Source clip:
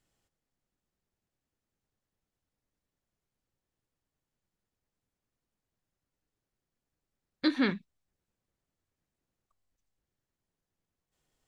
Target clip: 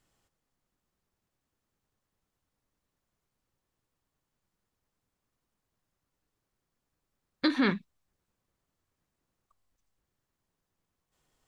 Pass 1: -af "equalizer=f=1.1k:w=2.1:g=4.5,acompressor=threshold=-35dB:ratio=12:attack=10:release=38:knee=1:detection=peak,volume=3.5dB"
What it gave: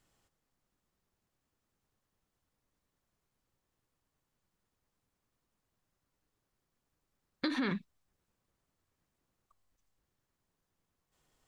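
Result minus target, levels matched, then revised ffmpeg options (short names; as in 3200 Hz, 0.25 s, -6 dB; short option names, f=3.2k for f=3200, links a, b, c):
compressor: peak gain reduction +8.5 dB
-af "equalizer=f=1.1k:w=2.1:g=4.5,acompressor=threshold=-26dB:ratio=12:attack=10:release=38:knee=1:detection=peak,volume=3.5dB"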